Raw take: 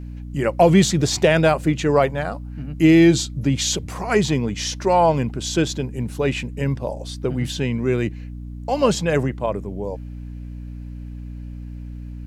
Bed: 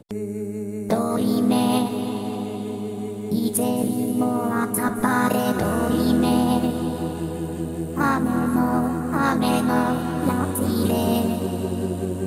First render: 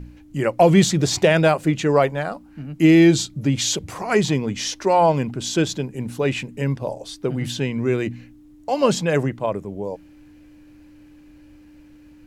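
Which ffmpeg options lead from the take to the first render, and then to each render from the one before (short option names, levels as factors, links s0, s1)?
-af "bandreject=f=60:t=h:w=4,bandreject=f=120:t=h:w=4,bandreject=f=180:t=h:w=4,bandreject=f=240:t=h:w=4"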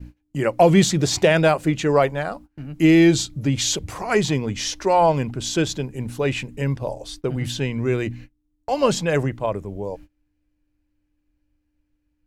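-af "agate=range=0.0562:threshold=0.0112:ratio=16:detection=peak,asubboost=boost=3.5:cutoff=87"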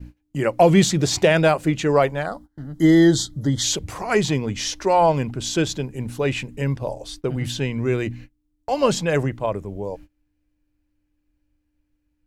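-filter_complex "[0:a]asettb=1/sr,asplit=3[s0][s1][s2];[s0]atrim=end=2.264[s3];[s1]atrim=start=2.26:end=3.64,asetpts=PTS-STARTPTS,afade=t=in:d=0.004:c=qsin,afade=t=out:st=1.376:d=0.004:c=qsin,asuperstop=centerf=2500:order=12:qfactor=2.6[s4];[s2]atrim=start=3.636[s5];[s3][s4]acrossfade=d=0.004:c1=hsin:c2=qsin[s6];[s6][s5]acrossfade=d=0.004:c1=qsin:c2=hsin"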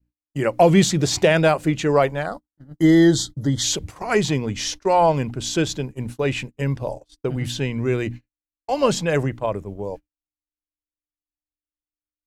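-af "agate=range=0.0224:threshold=0.0282:ratio=16:detection=peak"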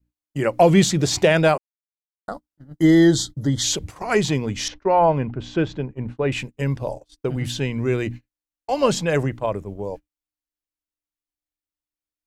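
-filter_complex "[0:a]asettb=1/sr,asplit=3[s0][s1][s2];[s0]atrim=end=4.684[s3];[s1]atrim=start=4.68:end=6.32,asetpts=PTS-STARTPTS,afade=t=in:d=0.004:c=qsin,afade=t=out:st=1.636:d=0.004:c=qsin,lowpass=2100[s4];[s2]atrim=start=6.316[s5];[s3][s4]acrossfade=d=0.004:c1=hsin:c2=qsin[s6];[s6][s5]acrossfade=d=0.004:c1=qsin:c2=hsin,asplit=3[s7][s8][s9];[s7]atrim=end=1.58,asetpts=PTS-STARTPTS,afade=t=out:st=1.576:d=0.004:c=hsin[s10];[s8]atrim=start=1.58:end=2.28,asetpts=PTS-STARTPTS,volume=0[s11];[s9]atrim=start=2.28,asetpts=PTS-STARTPTS,afade=t=in:d=0.004:c=hsin[s12];[s10][s11][s12]concat=n=3:v=0:a=1"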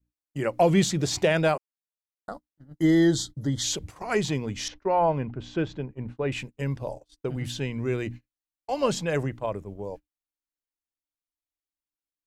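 -af "volume=0.501"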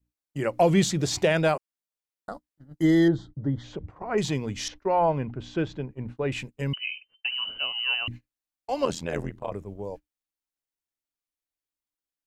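-filter_complex "[0:a]asettb=1/sr,asplit=3[s0][s1][s2];[s0]atrim=end=3.084[s3];[s1]atrim=start=3.08:end=4.18,asetpts=PTS-STARTPTS,afade=t=in:d=0.004:c=qsin,afade=t=out:st=1.096:d=0.004:c=qsin,lowpass=1300[s4];[s2]atrim=start=4.176[s5];[s3][s4]acrossfade=d=0.004:c1=hsin:c2=qsin[s6];[s6][s5]acrossfade=d=0.004:c1=qsin:c2=hsin,asettb=1/sr,asplit=3[s7][s8][s9];[s7]atrim=end=6.734[s10];[s8]atrim=start=6.73:end=8.08,asetpts=PTS-STARTPTS,afade=t=in:d=0.004:c=qsin,afade=t=out:st=1.346:d=0.004:c=qsin,lowpass=f=2600:t=q:w=0.5098,lowpass=f=2600:t=q:w=0.6013,lowpass=f=2600:t=q:w=0.9,lowpass=f=2600:t=q:w=2.563,afreqshift=-3100[s11];[s9]atrim=start=8.076[s12];[s10][s11]acrossfade=d=0.004:c1=hsin:c2=qsin[s13];[s13][s12]acrossfade=d=0.004:c1=qsin:c2=hsin,asettb=1/sr,asplit=3[s14][s15][s16];[s14]atrim=end=8.854[s17];[s15]atrim=start=8.85:end=9.52,asetpts=PTS-STARTPTS,afade=t=in:d=0.004:c=qsin,afade=t=out:st=0.666:d=0.004:c=qsin,tremolo=f=84:d=0.974[s18];[s16]atrim=start=9.516[s19];[s17][s18]acrossfade=d=0.004:c1=hsin:c2=qsin[s20];[s20][s19]acrossfade=d=0.004:c1=qsin:c2=hsin"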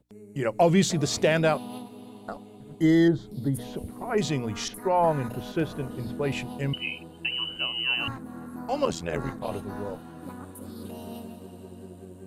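-filter_complex "[1:a]volume=0.119[s0];[0:a][s0]amix=inputs=2:normalize=0"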